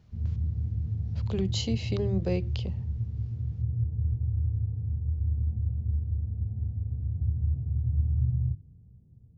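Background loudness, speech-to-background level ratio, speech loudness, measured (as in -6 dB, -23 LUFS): -31.0 LUFS, -1.5 dB, -32.5 LUFS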